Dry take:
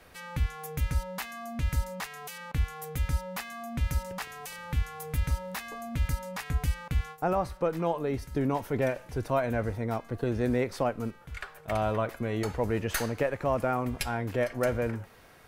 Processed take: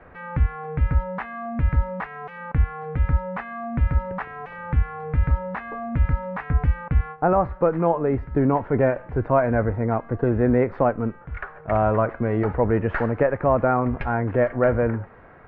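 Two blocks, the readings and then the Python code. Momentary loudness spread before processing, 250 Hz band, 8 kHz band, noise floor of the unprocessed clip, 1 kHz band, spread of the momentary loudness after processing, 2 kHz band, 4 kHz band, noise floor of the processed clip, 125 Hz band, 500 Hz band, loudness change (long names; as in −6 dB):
9 LU, +8.5 dB, below −35 dB, −53 dBFS, +8.5 dB, 11 LU, +5.5 dB, below −10 dB, −45 dBFS, +8.5 dB, +8.5 dB, +8.5 dB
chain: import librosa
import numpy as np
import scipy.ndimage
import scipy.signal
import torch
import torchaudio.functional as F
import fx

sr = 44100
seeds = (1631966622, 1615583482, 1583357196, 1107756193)

y = scipy.signal.sosfilt(scipy.signal.butter(4, 1800.0, 'lowpass', fs=sr, output='sos'), x)
y = y * librosa.db_to_amplitude(8.5)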